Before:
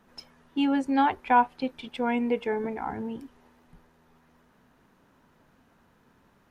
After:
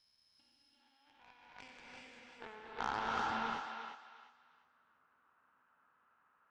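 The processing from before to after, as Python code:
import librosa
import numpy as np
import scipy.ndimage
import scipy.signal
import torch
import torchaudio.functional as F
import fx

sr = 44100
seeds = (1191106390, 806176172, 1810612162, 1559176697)

y = fx.spec_steps(x, sr, hold_ms=400)
y = fx.high_shelf(y, sr, hz=3700.0, db=-8.0)
y = fx.over_compress(y, sr, threshold_db=-35.0, ratio=-0.5)
y = fx.filter_sweep_bandpass(y, sr, from_hz=4600.0, to_hz=1300.0, start_s=0.47, end_s=2.28, q=3.4)
y = fx.cheby_harmonics(y, sr, harmonics=(5, 6, 7, 8), levels_db=(-26, -33, -16, -26), full_scale_db=-30.5)
y = fx.echo_thinned(y, sr, ms=351, feedback_pct=28, hz=640.0, wet_db=-5.5)
y = fx.rev_gated(y, sr, seeds[0], gate_ms=420, shape='rising', drr_db=-2.0)
y = y * librosa.db_to_amplitude(7.5)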